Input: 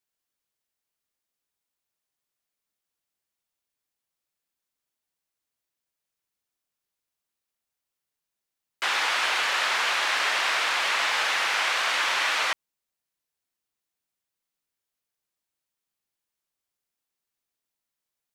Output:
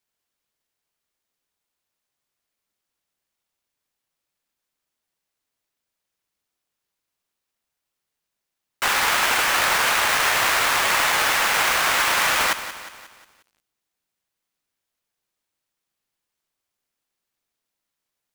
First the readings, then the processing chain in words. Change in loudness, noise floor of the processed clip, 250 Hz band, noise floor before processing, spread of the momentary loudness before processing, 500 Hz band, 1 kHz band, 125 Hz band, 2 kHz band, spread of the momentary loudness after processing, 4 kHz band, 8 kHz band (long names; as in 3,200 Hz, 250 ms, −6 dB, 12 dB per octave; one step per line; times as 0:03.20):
+5.0 dB, −83 dBFS, +12.0 dB, below −85 dBFS, 3 LU, +7.5 dB, +6.0 dB, can't be measured, +4.5 dB, 5 LU, +3.0 dB, +9.5 dB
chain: each half-wave held at its own peak
feedback echo at a low word length 179 ms, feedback 55%, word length 8 bits, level −12.5 dB
level +1 dB